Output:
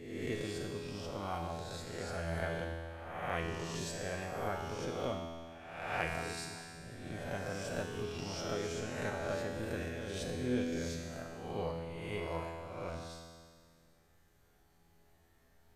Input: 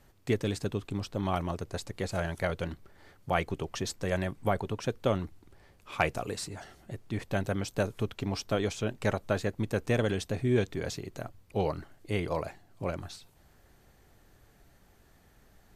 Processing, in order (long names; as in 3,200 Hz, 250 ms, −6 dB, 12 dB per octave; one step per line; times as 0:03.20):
peak hold with a rise ahead of every peak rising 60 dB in 1.09 s
0:09.82–0:10.36: compressor whose output falls as the input rises −30 dBFS, ratio −1
tuned comb filter 83 Hz, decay 1.9 s, harmonics all, mix 90%
level +5 dB